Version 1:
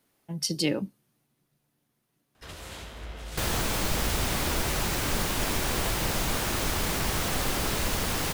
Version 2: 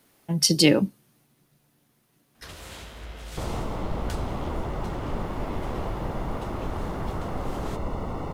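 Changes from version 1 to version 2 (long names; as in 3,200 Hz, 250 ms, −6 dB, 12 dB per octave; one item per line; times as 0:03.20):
speech +9.0 dB
second sound: add Savitzky-Golay smoothing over 65 samples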